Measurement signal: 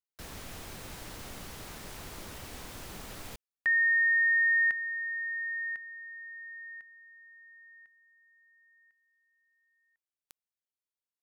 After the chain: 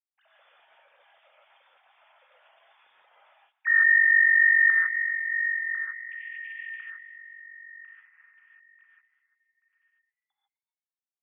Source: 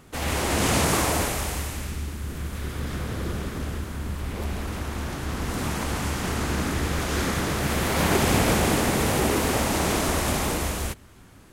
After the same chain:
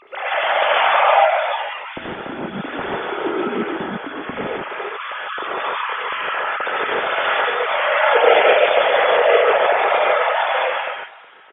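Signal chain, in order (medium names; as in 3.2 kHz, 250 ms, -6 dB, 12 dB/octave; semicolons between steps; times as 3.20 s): formants replaced by sine waves; frequency-shifting echo 255 ms, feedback 33%, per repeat +120 Hz, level -19.5 dB; gated-style reverb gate 170 ms rising, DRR -4.5 dB; trim +1 dB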